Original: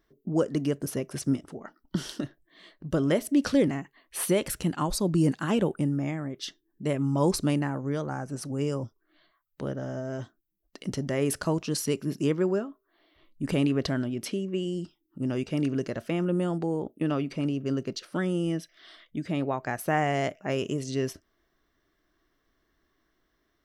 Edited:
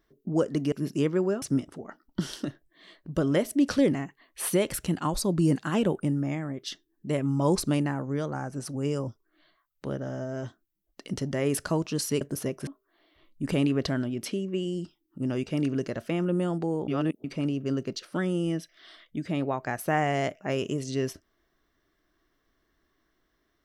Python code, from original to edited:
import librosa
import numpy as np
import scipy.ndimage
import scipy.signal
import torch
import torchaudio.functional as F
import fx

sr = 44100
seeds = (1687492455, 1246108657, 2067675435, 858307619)

y = fx.edit(x, sr, fx.swap(start_s=0.72, length_s=0.46, other_s=11.97, other_length_s=0.7),
    fx.reverse_span(start_s=16.88, length_s=0.36), tone=tone)